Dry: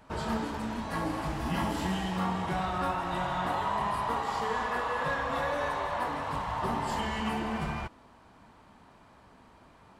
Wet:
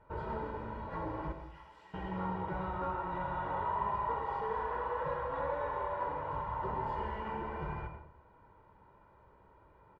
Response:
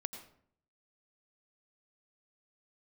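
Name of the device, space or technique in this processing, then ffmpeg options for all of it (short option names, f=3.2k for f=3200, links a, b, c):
microphone above a desk: -filter_complex "[0:a]lowpass=1.5k,asettb=1/sr,asplit=3[a][b][c];[a]atrim=end=1.324[d];[b]atrim=start=1.32:end=1.94,asetpts=PTS-STARTPTS,afade=t=in:d=0.004:c=qsin,afade=t=out:st=0.616:d=0.004:c=qsin,aderivative[e];[c]atrim=start=1.936[f];[d][e]acrossfade=d=0.004:c1=hsin:c2=qsin[g];[g][f]acrossfade=d=0.004:c1=qsin:c2=hsin,aecho=1:1:2.1:0.7[h];[1:a]atrim=start_sample=2205[i];[h][i]afir=irnorm=-1:irlink=0,volume=-5dB"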